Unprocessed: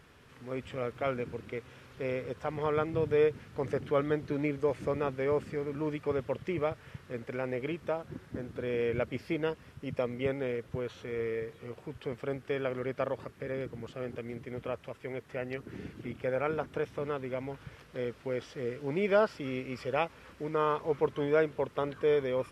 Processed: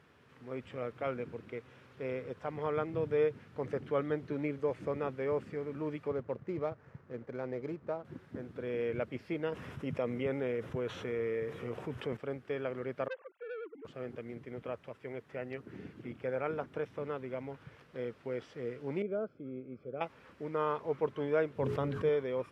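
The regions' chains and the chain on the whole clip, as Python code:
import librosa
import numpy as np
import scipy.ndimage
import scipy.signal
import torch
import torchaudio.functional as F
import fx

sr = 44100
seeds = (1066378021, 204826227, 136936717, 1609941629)

y = fx.chain(x, sr, fx.median_filter(points=15),
    fx.high_shelf(hz=3200.0, db=-9.5), at=(6.08, 8.05))
y = fx.chain(y, sr, fx.peak_eq(hz=4400.0, db=-6.0, octaves=0.25),
    fx.env_flatten(amount_pct=50), at=(9.52, 12.17))
y = fx.chain(y, sr, fx.sine_speech(),
    fx.transformer_sat(knee_hz=1700.0), at=(13.08, 13.85))
y = fx.chain(y, sr, fx.moving_average(points=47),
    fx.low_shelf(hz=110.0, db=-9.5), at=(19.02, 20.01))
y = fx.chain(y, sr, fx.bass_treble(bass_db=11, treble_db=3),
    fx.hum_notches(base_hz=60, count=7),
    fx.sustainer(db_per_s=35.0), at=(21.55, 22.09))
y = scipy.signal.sosfilt(scipy.signal.butter(2, 100.0, 'highpass', fs=sr, output='sos'), y)
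y = fx.high_shelf(y, sr, hz=4500.0, db=-10.0)
y = y * librosa.db_to_amplitude(-3.5)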